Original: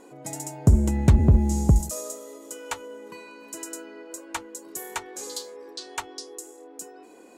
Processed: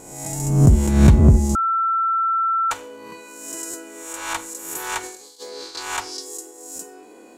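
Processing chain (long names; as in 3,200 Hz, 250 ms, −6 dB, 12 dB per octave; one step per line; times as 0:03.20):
peak hold with a rise ahead of every peak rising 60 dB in 0.87 s
0:05.03–0:05.75: compressor whose output falls as the input rises −39 dBFS, ratio −0.5
four-comb reverb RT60 0.49 s, combs from 31 ms, DRR 13.5 dB
0:01.55–0:02.71: beep over 1,340 Hz −19 dBFS
buffer that repeats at 0:03.70/0:06.75, samples 512, times 2
level +2 dB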